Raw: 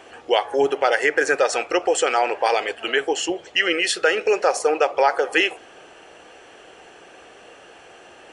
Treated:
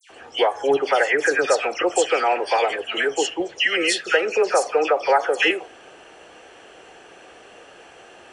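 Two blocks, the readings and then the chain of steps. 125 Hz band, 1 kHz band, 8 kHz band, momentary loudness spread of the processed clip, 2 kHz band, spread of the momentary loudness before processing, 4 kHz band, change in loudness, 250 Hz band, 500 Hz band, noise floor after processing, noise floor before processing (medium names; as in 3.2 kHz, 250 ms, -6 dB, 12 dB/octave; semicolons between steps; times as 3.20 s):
no reading, 0.0 dB, 0.0 dB, 4 LU, 0.0 dB, 4 LU, 0.0 dB, 0.0 dB, 0.0 dB, 0.0 dB, -47 dBFS, -47 dBFS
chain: phase dispersion lows, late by 104 ms, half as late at 2.3 kHz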